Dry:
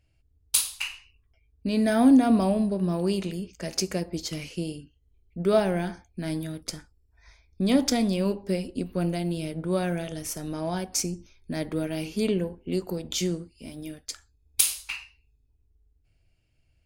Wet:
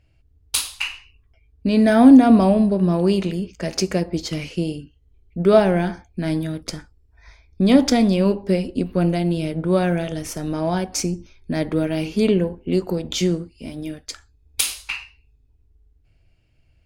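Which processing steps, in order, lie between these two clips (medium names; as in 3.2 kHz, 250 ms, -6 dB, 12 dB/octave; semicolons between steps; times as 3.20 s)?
treble shelf 6.1 kHz -11.5 dB; trim +8 dB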